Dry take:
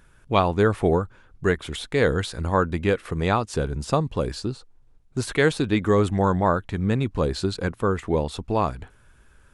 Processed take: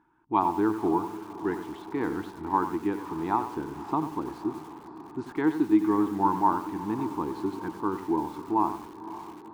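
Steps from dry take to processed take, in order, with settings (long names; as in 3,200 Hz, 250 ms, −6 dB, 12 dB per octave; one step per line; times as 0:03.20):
pair of resonant band-passes 540 Hz, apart 1.5 octaves
feedback delay with all-pass diffusion 553 ms, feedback 64%, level −14 dB
feedback echo at a low word length 92 ms, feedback 35%, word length 8 bits, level −10 dB
level +5 dB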